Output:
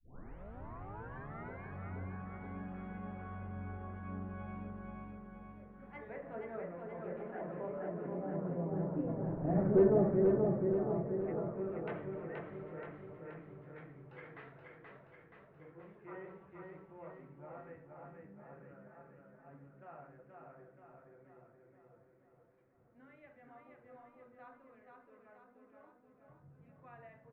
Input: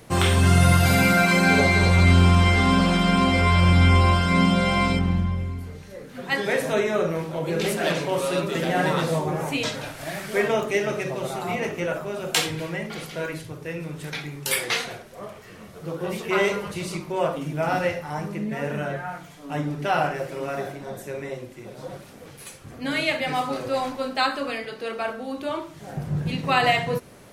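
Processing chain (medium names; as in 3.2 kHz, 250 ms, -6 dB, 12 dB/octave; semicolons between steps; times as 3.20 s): tape start-up on the opening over 1.78 s; Doppler pass-by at 9.63 s, 20 m/s, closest 2.6 m; low-pass 1.8 kHz 24 dB/octave; hard clipper -24.5 dBFS, distortion -14 dB; low-pass that closes with the level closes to 440 Hz, closed at -43 dBFS; feedback delay 477 ms, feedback 57%, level -3.5 dB; trim +7 dB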